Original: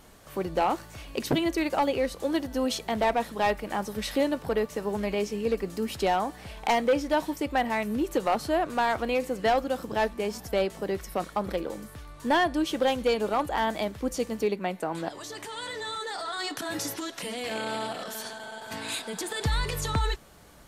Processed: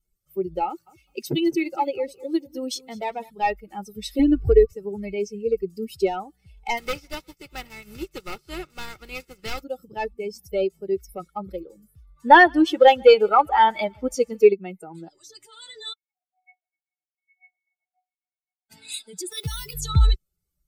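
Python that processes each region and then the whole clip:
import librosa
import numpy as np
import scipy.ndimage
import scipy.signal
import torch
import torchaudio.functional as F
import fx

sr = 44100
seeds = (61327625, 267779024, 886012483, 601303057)

y = fx.chain(x, sr, fx.highpass(hz=130.0, slope=6),
    fx.echo_crushed(ms=205, feedback_pct=35, bits=9, wet_db=-10.5), at=(0.66, 3.3))
y = fx.chain(y, sr, fx.bass_treble(bass_db=9, treble_db=-6),
    fx.comb(ms=2.7, depth=0.8),
    fx.band_squash(depth_pct=70), at=(4.19, 4.73))
y = fx.spec_flatten(y, sr, power=0.36, at=(6.77, 9.62), fade=0.02)
y = fx.lowpass(y, sr, hz=1800.0, slope=6, at=(6.77, 9.62), fade=0.02)
y = fx.echo_single(y, sr, ms=361, db=-22.5, at=(6.77, 9.62), fade=0.02)
y = fx.chain(y, sr, fx.peak_eq(hz=1300.0, db=9.0, octaves=2.8),
    fx.echo_feedback(ms=143, feedback_pct=54, wet_db=-16.0), at=(12.16, 14.53))
y = fx.chain(y, sr, fx.chopper(hz=7.5, depth_pct=65, duty_pct=45),
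    fx.brickwall_lowpass(high_hz=2600.0),
    fx.comb_fb(f0_hz=730.0, decay_s=0.21, harmonics='odd', damping=0.0, mix_pct=100), at=(15.93, 18.7))
y = fx.chain(y, sr, fx.highpass(hz=170.0, slope=6),
    fx.resample_bad(factor=6, down='none', up='hold'), at=(19.31, 19.74))
y = fx.bin_expand(y, sr, power=2.0)
y = fx.low_shelf(y, sr, hz=490.0, db=6.0)
y = y + 0.6 * np.pad(y, (int(2.3 * sr / 1000.0), 0))[:len(y)]
y = y * librosa.db_to_amplitude(4.5)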